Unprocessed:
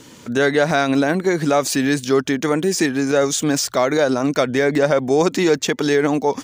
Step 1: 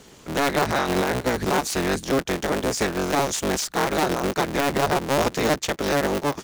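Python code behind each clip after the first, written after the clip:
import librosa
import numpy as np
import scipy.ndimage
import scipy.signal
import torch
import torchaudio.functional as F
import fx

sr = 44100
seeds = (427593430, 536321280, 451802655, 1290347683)

y = fx.cycle_switch(x, sr, every=3, mode='inverted')
y = F.gain(torch.from_numpy(y), -5.5).numpy()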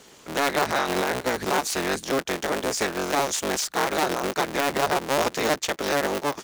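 y = fx.low_shelf(x, sr, hz=230.0, db=-11.5)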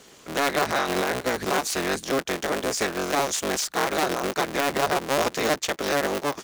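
y = fx.notch(x, sr, hz=890.0, q=17.0)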